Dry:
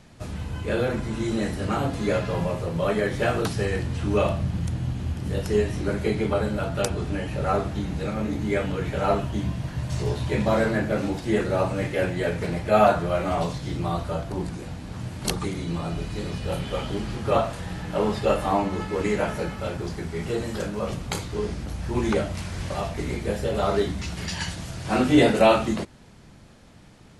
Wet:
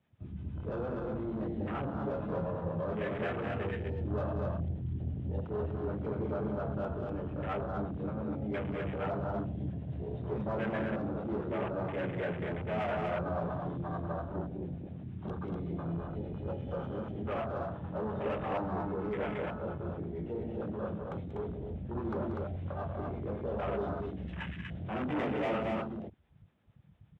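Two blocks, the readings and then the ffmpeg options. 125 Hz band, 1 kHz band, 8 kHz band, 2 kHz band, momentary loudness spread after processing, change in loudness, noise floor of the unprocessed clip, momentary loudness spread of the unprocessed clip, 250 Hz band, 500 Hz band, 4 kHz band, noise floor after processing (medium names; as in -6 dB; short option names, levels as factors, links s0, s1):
-9.0 dB, -11.5 dB, under -35 dB, -12.0 dB, 6 LU, -10.5 dB, -48 dBFS, 9 LU, -9.5 dB, -11.0 dB, -19.5 dB, -46 dBFS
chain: -filter_complex "[0:a]aresample=8000,volume=5.62,asoftclip=hard,volume=0.178,aresample=44100,acrossover=split=510[s0][s1];[s0]aeval=exprs='val(0)*(1-0.5/2+0.5/2*cos(2*PI*8.7*n/s))':c=same[s2];[s1]aeval=exprs='val(0)*(1-0.5/2-0.5/2*cos(2*PI*8.7*n/s))':c=same[s3];[s2][s3]amix=inputs=2:normalize=0,asoftclip=type=tanh:threshold=0.0473,highpass=f=56:w=0.5412,highpass=f=56:w=1.3066,bandreject=f=60:t=h:w=6,bandreject=f=120:t=h:w=6,aecho=1:1:186.6|244.9:0.398|0.708,afwtdn=0.0178,volume=0.562"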